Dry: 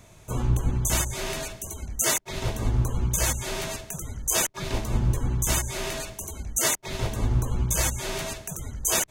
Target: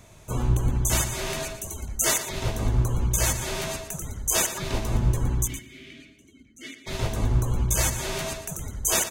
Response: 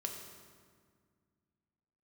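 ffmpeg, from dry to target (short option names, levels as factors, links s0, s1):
-filter_complex "[0:a]asplit=3[s0][s1][s2];[s0]afade=t=out:st=5.46:d=0.02[s3];[s1]asplit=3[s4][s5][s6];[s4]bandpass=f=270:t=q:w=8,volume=1[s7];[s5]bandpass=f=2290:t=q:w=8,volume=0.501[s8];[s6]bandpass=f=3010:t=q:w=8,volume=0.355[s9];[s7][s8][s9]amix=inputs=3:normalize=0,afade=t=in:st=5.46:d=0.02,afade=t=out:st=6.86:d=0.02[s10];[s2]afade=t=in:st=6.86:d=0.02[s11];[s3][s10][s11]amix=inputs=3:normalize=0,asplit=2[s12][s13];[s13]adelay=116.6,volume=0.316,highshelf=f=4000:g=-2.62[s14];[s12][s14]amix=inputs=2:normalize=0,asplit=2[s15][s16];[1:a]atrim=start_sample=2205[s17];[s16][s17]afir=irnorm=-1:irlink=0,volume=0.106[s18];[s15][s18]amix=inputs=2:normalize=0"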